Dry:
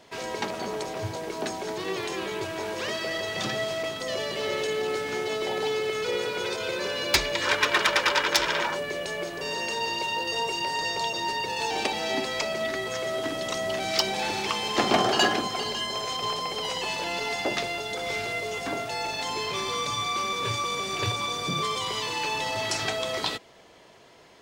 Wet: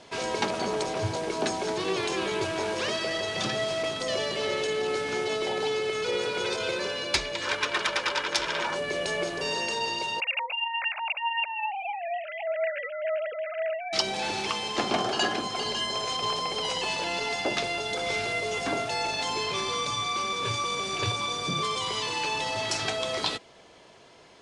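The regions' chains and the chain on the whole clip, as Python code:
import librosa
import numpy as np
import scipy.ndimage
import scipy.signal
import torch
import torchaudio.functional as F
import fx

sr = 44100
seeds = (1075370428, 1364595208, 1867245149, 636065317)

y = fx.chain(x, sr, fx.sine_speech(),
    fx.steep_lowpass(hz=2800.0, slope=72), at=(10.2, 13.93))
y = fx.rider(y, sr, range_db=4, speed_s=0.5)
y = scipy.signal.sosfilt(scipy.signal.ellip(4, 1.0, 60, 10000.0, 'lowpass', fs=sr, output='sos'), y)
y = fx.notch(y, sr, hz=1900.0, q=20.0)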